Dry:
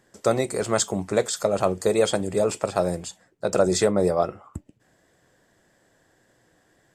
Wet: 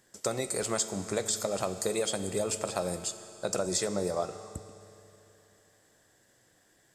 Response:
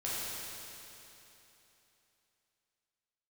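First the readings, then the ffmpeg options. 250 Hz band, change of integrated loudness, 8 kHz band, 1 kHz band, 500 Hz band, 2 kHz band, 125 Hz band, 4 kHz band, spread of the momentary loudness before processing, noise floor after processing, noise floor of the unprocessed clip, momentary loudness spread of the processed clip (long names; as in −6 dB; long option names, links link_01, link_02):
−9.5 dB, −8.0 dB, −1.5 dB, −9.0 dB, −10.0 dB, −7.0 dB, −9.0 dB, −4.0 dB, 12 LU, −66 dBFS, −64 dBFS, 8 LU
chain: -filter_complex "[0:a]highshelf=frequency=3100:gain=11,acompressor=threshold=-20dB:ratio=6,asplit=2[link_01][link_02];[1:a]atrim=start_sample=2205,adelay=15[link_03];[link_02][link_03]afir=irnorm=-1:irlink=0,volume=-15.5dB[link_04];[link_01][link_04]amix=inputs=2:normalize=0,volume=-6.5dB"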